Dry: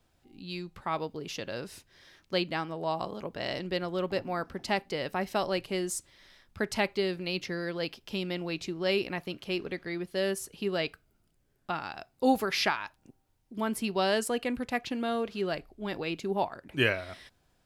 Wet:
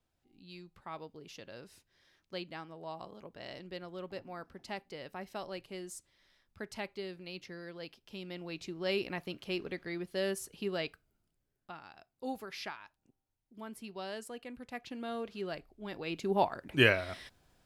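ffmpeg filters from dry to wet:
ffmpeg -i in.wav -af "volume=12dB,afade=type=in:start_time=8.13:duration=0.98:silence=0.398107,afade=type=out:start_time=10.55:duration=1.2:silence=0.298538,afade=type=in:start_time=14.54:duration=0.67:silence=0.446684,afade=type=in:start_time=15.99:duration=0.45:silence=0.354813" out.wav

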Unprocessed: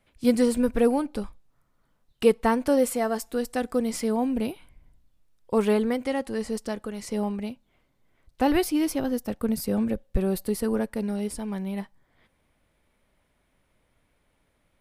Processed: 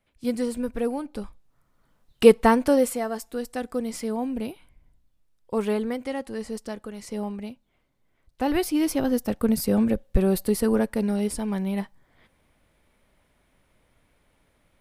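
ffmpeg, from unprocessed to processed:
ffmpeg -i in.wav -af "volume=13dB,afade=type=in:start_time=1:duration=1.32:silence=0.266073,afade=type=out:start_time=2.32:duration=0.73:silence=0.354813,afade=type=in:start_time=8.44:duration=0.72:silence=0.446684" out.wav

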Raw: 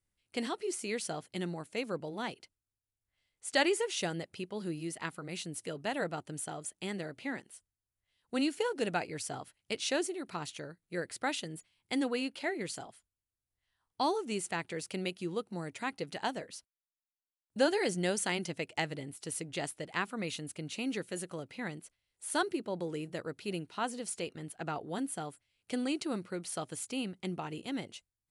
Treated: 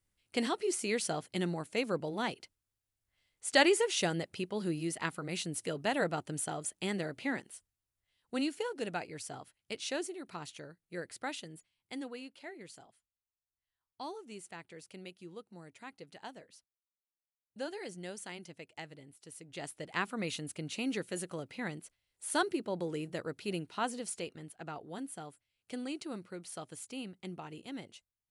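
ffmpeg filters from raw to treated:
ffmpeg -i in.wav -af "volume=15.5dB,afade=type=out:start_time=7.42:duration=1.25:silence=0.421697,afade=type=out:start_time=11.1:duration=1.16:silence=0.421697,afade=type=in:start_time=19.41:duration=0.64:silence=0.237137,afade=type=out:start_time=23.89:duration=0.66:silence=0.473151" out.wav

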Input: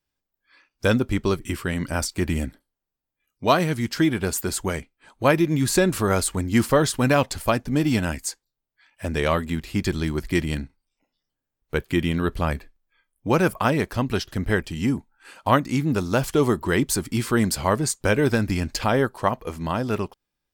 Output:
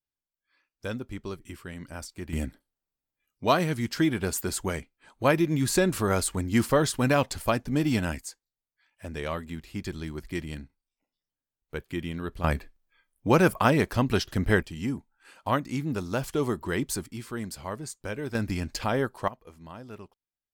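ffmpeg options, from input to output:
ffmpeg -i in.wav -af "asetnsamples=nb_out_samples=441:pad=0,asendcmd='2.33 volume volume -4dB;8.21 volume volume -10.5dB;12.44 volume volume -0.5dB;14.63 volume volume -7.5dB;17.06 volume volume -14dB;18.35 volume volume -6dB;19.28 volume volume -18dB',volume=-14dB" out.wav

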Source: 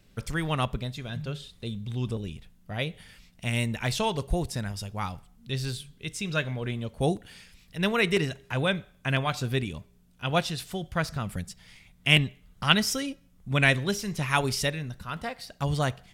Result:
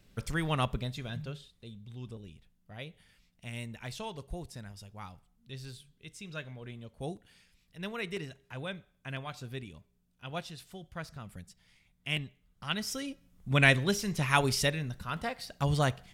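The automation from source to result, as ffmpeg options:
ffmpeg -i in.wav -af "volume=9.5dB,afade=type=out:start_time=1.05:duration=0.47:silence=0.298538,afade=type=in:start_time=12.71:duration=0.82:silence=0.251189" out.wav

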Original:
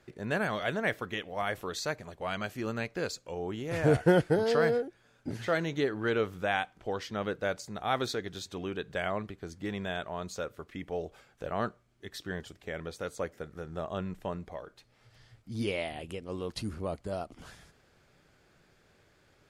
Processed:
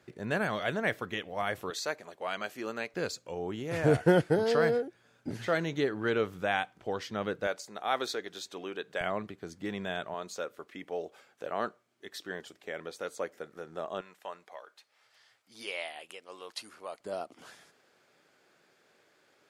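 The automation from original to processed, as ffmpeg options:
ffmpeg -i in.wav -af "asetnsamples=nb_out_samples=441:pad=0,asendcmd='1.7 highpass f 320;2.94 highpass f 100;7.47 highpass f 350;9.01 highpass f 140;10.14 highpass f 290;14.01 highpass f 780;17 highpass f 300',highpass=86" out.wav

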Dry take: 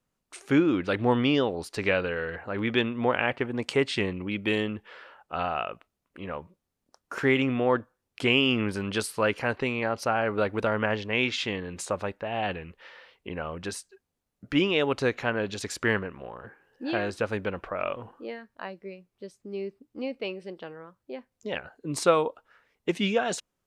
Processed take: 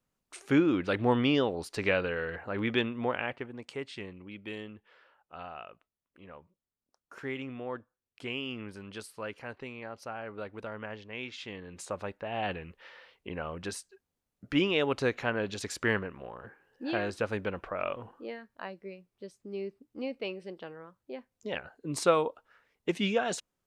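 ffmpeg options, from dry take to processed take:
ffmpeg -i in.wav -af "volume=8.5dB,afade=type=out:start_time=2.63:duration=0.99:silence=0.266073,afade=type=in:start_time=11.34:duration=1.19:silence=0.281838" out.wav

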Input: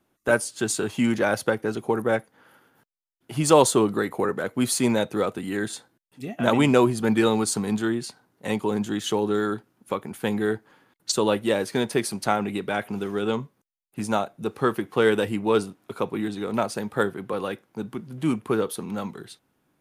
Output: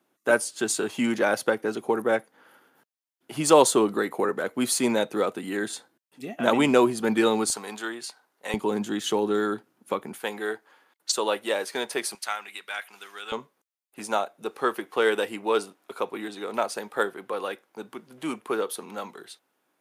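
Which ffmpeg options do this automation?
ffmpeg -i in.wav -af "asetnsamples=nb_out_samples=441:pad=0,asendcmd='7.5 highpass f 610;8.54 highpass f 210;10.18 highpass f 530;12.15 highpass f 1500;13.32 highpass f 430',highpass=240" out.wav

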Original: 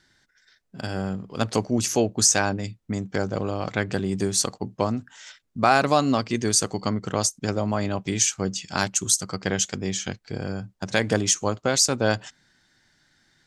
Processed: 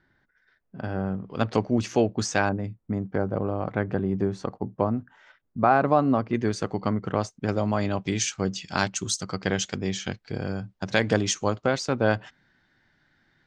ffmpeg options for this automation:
ffmpeg -i in.wav -af "asetnsamples=nb_out_samples=441:pad=0,asendcmd='1.26 lowpass f 2900;2.49 lowpass f 1300;6.33 lowpass f 2200;7.49 lowpass f 4600;11.66 lowpass f 2500',lowpass=1600" out.wav

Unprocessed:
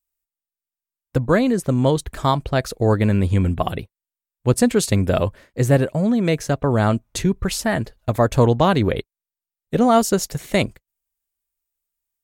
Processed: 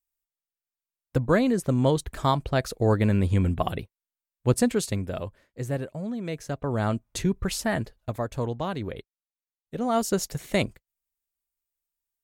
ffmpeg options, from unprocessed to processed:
ffmpeg -i in.wav -af "volume=12dB,afade=type=out:start_time=4.5:duration=0.6:silence=0.354813,afade=type=in:start_time=6.28:duration=1:silence=0.398107,afade=type=out:start_time=7.8:duration=0.46:silence=0.375837,afade=type=in:start_time=9.77:duration=0.42:silence=0.375837" out.wav

